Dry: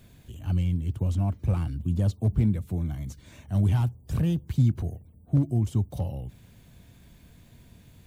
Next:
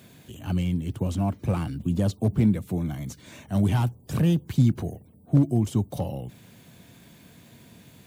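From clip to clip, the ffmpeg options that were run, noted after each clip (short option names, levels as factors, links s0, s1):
-af "highpass=160,volume=2.11"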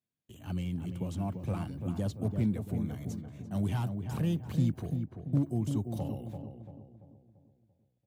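-filter_complex "[0:a]agate=range=0.02:threshold=0.00708:ratio=16:detection=peak,asplit=2[s0][s1];[s1]adelay=340,lowpass=f=1400:p=1,volume=0.501,asplit=2[s2][s3];[s3]adelay=340,lowpass=f=1400:p=1,volume=0.46,asplit=2[s4][s5];[s5]adelay=340,lowpass=f=1400:p=1,volume=0.46,asplit=2[s6][s7];[s7]adelay=340,lowpass=f=1400:p=1,volume=0.46,asplit=2[s8][s9];[s9]adelay=340,lowpass=f=1400:p=1,volume=0.46,asplit=2[s10][s11];[s11]adelay=340,lowpass=f=1400:p=1,volume=0.46[s12];[s2][s4][s6][s8][s10][s12]amix=inputs=6:normalize=0[s13];[s0][s13]amix=inputs=2:normalize=0,volume=0.355"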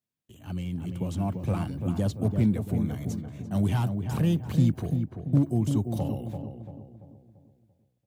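-af "dynaudnorm=f=350:g=5:m=2"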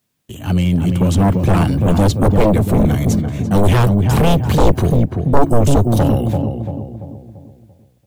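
-af "aeval=exprs='0.266*sin(PI/2*3.98*val(0)/0.266)':c=same,asubboost=boost=2.5:cutoff=68,volume=1.5"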